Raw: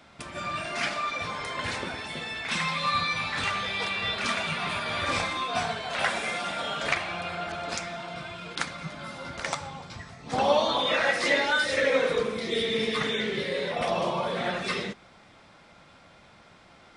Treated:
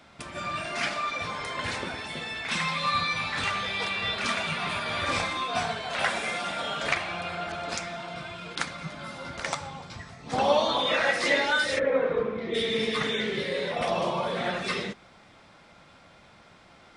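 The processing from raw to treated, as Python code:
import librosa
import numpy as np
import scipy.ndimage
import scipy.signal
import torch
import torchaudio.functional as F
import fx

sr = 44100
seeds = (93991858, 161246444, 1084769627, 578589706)

y = fx.lowpass(x, sr, hz=fx.line((11.78, 1200.0), (12.53, 1900.0)), slope=12, at=(11.78, 12.53), fade=0.02)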